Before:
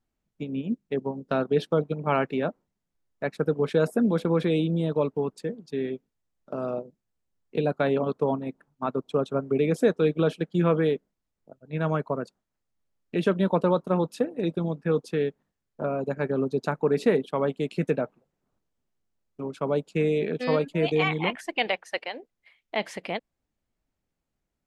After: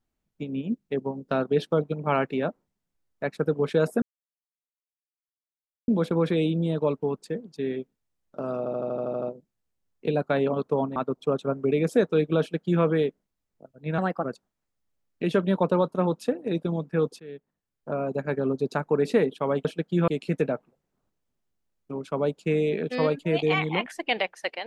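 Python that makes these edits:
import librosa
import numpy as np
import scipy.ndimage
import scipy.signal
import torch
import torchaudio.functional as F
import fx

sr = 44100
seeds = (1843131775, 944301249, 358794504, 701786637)

y = fx.edit(x, sr, fx.insert_silence(at_s=4.02, length_s=1.86),
    fx.stutter(start_s=6.72, slice_s=0.08, count=9),
    fx.cut(start_s=8.46, length_s=0.37),
    fx.duplicate(start_s=10.27, length_s=0.43, to_s=17.57),
    fx.speed_span(start_s=11.85, length_s=0.31, speed=1.2),
    fx.fade_in_from(start_s=15.12, length_s=0.82, floor_db=-22.5), tone=tone)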